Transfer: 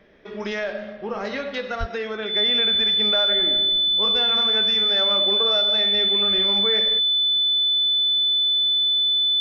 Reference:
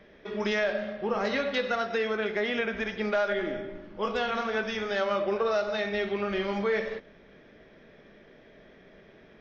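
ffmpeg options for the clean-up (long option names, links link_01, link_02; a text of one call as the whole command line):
ffmpeg -i in.wav -filter_complex "[0:a]bandreject=frequency=3500:width=30,asplit=3[link_01][link_02][link_03];[link_01]afade=type=out:start_time=1.79:duration=0.02[link_04];[link_02]highpass=frequency=140:width=0.5412,highpass=frequency=140:width=1.3066,afade=type=in:start_time=1.79:duration=0.02,afade=type=out:start_time=1.91:duration=0.02[link_05];[link_03]afade=type=in:start_time=1.91:duration=0.02[link_06];[link_04][link_05][link_06]amix=inputs=3:normalize=0" out.wav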